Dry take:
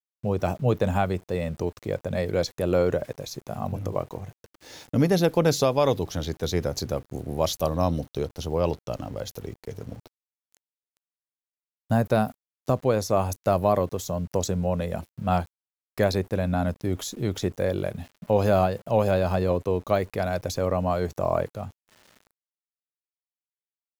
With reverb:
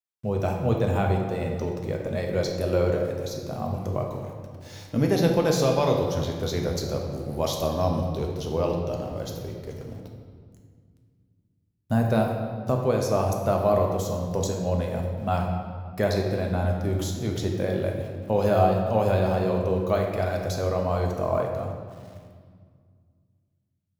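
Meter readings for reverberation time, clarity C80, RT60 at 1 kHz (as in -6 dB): 1.9 s, 5.0 dB, 1.8 s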